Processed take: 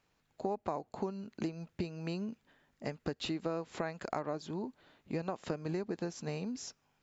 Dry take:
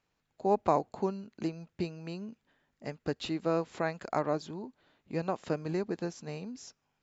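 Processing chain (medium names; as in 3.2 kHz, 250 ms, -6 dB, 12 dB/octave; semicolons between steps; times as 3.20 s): compression 6:1, threshold -37 dBFS, peak gain reduction 15.5 dB; trim +4 dB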